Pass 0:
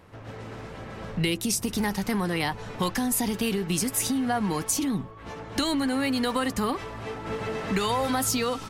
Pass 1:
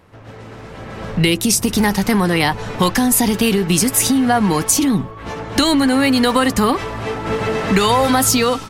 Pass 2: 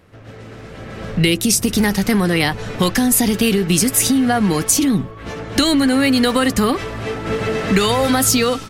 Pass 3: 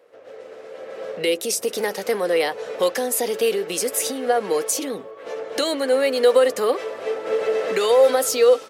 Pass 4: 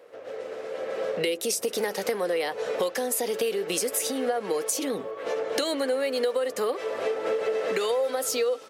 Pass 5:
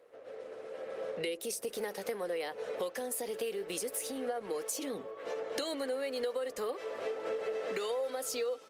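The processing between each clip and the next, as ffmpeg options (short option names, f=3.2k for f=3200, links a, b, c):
-af "dynaudnorm=f=610:g=3:m=9.5dB,volume=2.5dB"
-af "equalizer=f=930:t=o:w=0.55:g=-7.5"
-af "highpass=f=500:t=q:w=5.5,volume=-8dB"
-af "acompressor=threshold=-28dB:ratio=6,volume=3.5dB"
-af "volume=-9dB" -ar 48000 -c:a libopus -b:a 32k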